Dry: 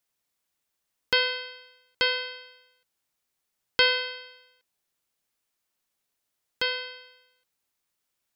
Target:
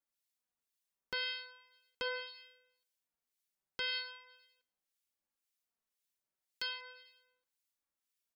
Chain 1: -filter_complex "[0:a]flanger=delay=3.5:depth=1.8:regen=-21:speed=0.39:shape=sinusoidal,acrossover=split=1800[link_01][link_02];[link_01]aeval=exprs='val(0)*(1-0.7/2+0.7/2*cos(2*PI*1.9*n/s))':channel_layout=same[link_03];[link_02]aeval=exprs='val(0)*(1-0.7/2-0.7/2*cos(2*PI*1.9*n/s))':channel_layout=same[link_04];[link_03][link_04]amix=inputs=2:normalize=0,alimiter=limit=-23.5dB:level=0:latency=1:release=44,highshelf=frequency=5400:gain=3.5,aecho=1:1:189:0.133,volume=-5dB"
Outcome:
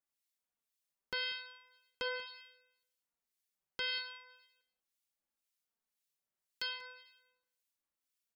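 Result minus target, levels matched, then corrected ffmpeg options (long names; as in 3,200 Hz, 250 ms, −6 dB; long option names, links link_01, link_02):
echo-to-direct +9.5 dB
-filter_complex "[0:a]flanger=delay=3.5:depth=1.8:regen=-21:speed=0.39:shape=sinusoidal,acrossover=split=1800[link_01][link_02];[link_01]aeval=exprs='val(0)*(1-0.7/2+0.7/2*cos(2*PI*1.9*n/s))':channel_layout=same[link_03];[link_02]aeval=exprs='val(0)*(1-0.7/2-0.7/2*cos(2*PI*1.9*n/s))':channel_layout=same[link_04];[link_03][link_04]amix=inputs=2:normalize=0,alimiter=limit=-23.5dB:level=0:latency=1:release=44,highshelf=frequency=5400:gain=3.5,aecho=1:1:189:0.0447,volume=-5dB"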